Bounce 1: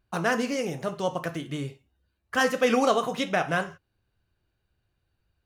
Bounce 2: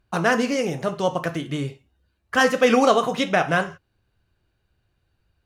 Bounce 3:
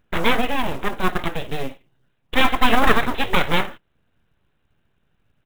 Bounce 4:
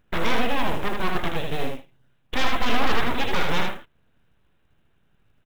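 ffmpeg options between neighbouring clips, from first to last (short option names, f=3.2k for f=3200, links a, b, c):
-af "highshelf=f=11k:g=-7.5,volume=5.5dB"
-af "aresample=8000,aeval=exprs='abs(val(0))':c=same,aresample=44100,acrusher=bits=6:mode=log:mix=0:aa=0.000001,volume=4dB"
-af "asoftclip=type=tanh:threshold=-14dB,aecho=1:1:78:0.596"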